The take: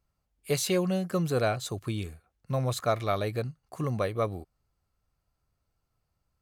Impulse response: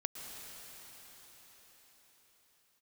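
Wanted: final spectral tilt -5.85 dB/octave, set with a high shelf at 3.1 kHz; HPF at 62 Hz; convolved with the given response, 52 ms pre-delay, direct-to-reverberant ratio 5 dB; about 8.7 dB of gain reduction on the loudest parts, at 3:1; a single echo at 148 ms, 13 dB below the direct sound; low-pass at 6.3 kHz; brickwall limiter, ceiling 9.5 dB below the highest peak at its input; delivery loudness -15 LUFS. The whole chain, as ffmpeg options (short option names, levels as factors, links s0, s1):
-filter_complex "[0:a]highpass=62,lowpass=6300,highshelf=f=3100:g=-3.5,acompressor=threshold=0.02:ratio=3,alimiter=level_in=2.37:limit=0.0631:level=0:latency=1,volume=0.422,aecho=1:1:148:0.224,asplit=2[s0][s1];[1:a]atrim=start_sample=2205,adelay=52[s2];[s1][s2]afir=irnorm=-1:irlink=0,volume=0.531[s3];[s0][s3]amix=inputs=2:normalize=0,volume=18.8"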